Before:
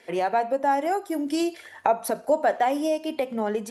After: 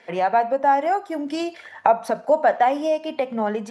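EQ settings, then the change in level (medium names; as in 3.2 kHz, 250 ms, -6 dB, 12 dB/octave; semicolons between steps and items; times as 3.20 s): band-pass 140–6700 Hz; peaking EQ 350 Hz -10 dB 1.1 oct; treble shelf 2.3 kHz -10 dB; +8.0 dB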